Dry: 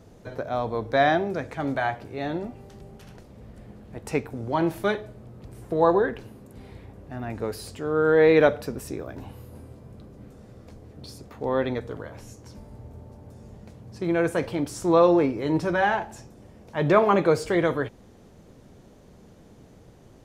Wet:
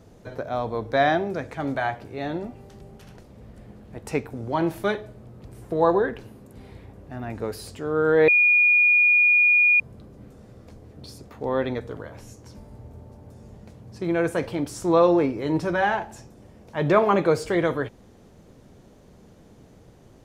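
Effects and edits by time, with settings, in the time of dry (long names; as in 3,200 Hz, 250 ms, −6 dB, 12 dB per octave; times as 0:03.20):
0:08.28–0:09.80: beep over 2,440 Hz −14 dBFS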